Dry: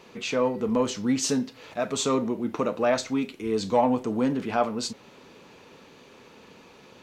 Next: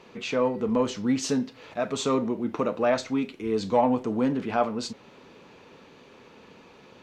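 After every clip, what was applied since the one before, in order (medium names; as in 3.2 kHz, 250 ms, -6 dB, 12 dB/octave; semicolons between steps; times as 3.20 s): treble shelf 7 kHz -11.5 dB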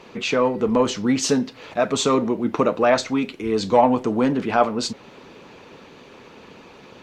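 harmonic-percussive split percussive +5 dB; trim +4 dB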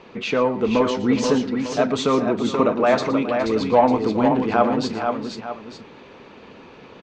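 distance through air 120 m; on a send: multi-tap echo 117/415/480/898 ms -15/-15/-5.5/-13 dB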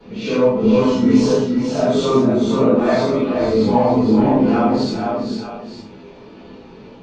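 phase randomisation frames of 200 ms; reverberation RT60 0.30 s, pre-delay 3 ms, DRR -6 dB; trim -10 dB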